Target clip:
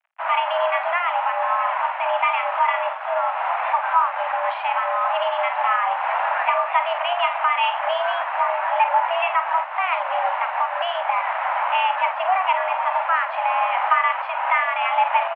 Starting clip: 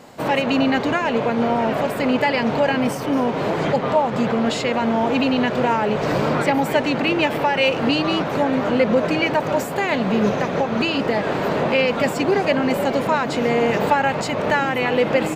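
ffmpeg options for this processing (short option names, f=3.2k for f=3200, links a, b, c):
-filter_complex "[0:a]asplit=2[a][b];[b]adelay=48,volume=-9dB[c];[a][c]amix=inputs=2:normalize=0,aeval=exprs='sgn(val(0))*max(abs(val(0))-0.0158,0)':c=same,highpass=f=290:t=q:w=0.5412,highpass=f=290:t=q:w=1.307,lowpass=f=2.4k:t=q:w=0.5176,lowpass=f=2.4k:t=q:w=0.7071,lowpass=f=2.4k:t=q:w=1.932,afreqshift=360"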